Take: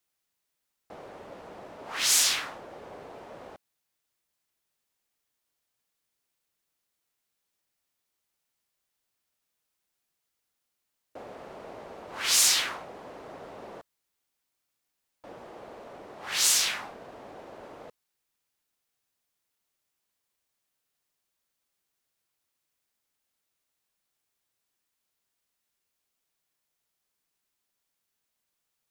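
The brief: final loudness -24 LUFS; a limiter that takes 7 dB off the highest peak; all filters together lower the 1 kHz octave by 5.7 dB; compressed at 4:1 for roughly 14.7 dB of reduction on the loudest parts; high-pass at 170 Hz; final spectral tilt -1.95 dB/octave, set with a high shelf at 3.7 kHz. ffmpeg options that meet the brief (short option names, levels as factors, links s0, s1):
-af "highpass=170,equalizer=f=1000:t=o:g=-7,highshelf=f=3700:g=-7,acompressor=threshold=0.00794:ratio=4,volume=14.1,alimiter=limit=0.237:level=0:latency=1"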